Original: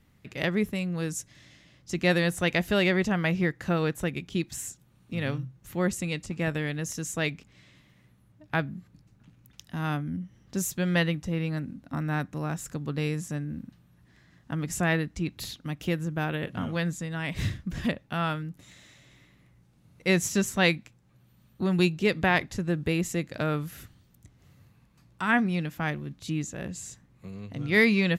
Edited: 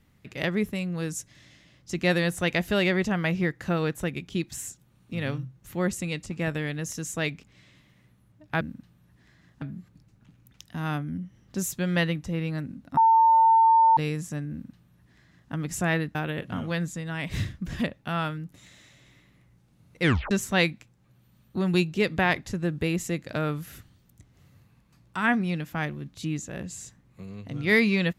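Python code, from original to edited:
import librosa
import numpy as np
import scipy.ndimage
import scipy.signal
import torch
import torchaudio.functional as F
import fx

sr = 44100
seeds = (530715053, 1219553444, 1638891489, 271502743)

y = fx.edit(x, sr, fx.bleep(start_s=11.96, length_s=1.0, hz=901.0, db=-14.5),
    fx.duplicate(start_s=13.5, length_s=1.01, to_s=8.61),
    fx.cut(start_s=15.14, length_s=1.06),
    fx.tape_stop(start_s=20.07, length_s=0.29), tone=tone)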